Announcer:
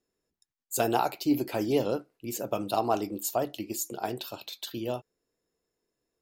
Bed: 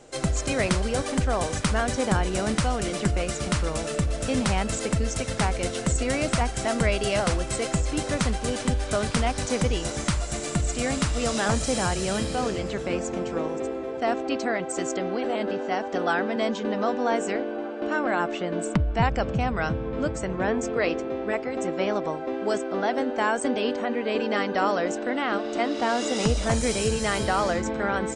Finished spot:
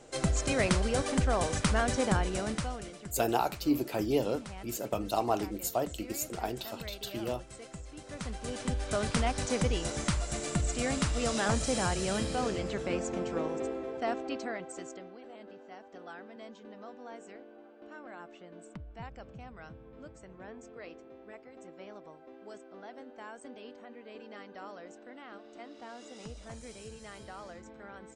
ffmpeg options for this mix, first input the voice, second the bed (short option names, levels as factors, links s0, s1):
-filter_complex "[0:a]adelay=2400,volume=0.75[s0];[1:a]volume=3.76,afade=t=out:st=1.99:d=0.99:silence=0.149624,afade=t=in:st=8.03:d=1.06:silence=0.177828,afade=t=out:st=13.66:d=1.48:silence=0.141254[s1];[s0][s1]amix=inputs=2:normalize=0"